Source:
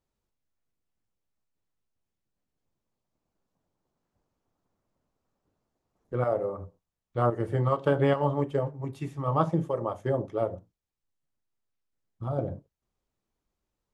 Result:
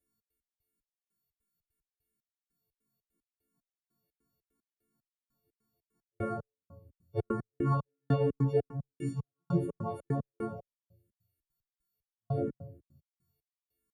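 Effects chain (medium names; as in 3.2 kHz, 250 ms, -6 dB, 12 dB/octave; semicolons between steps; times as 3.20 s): partials quantised in pitch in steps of 4 st; tone controls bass +3 dB, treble -3 dB; band-stop 3.2 kHz, Q 7.9; simulated room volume 69 m³, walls mixed, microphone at 0.58 m; trance gate "xx.x..xx...xx." 150 bpm -60 dB; high-pass 90 Hz 6 dB/octave; peaking EQ 2.4 kHz -11.5 dB 2.4 oct; barber-pole phaser -2.9 Hz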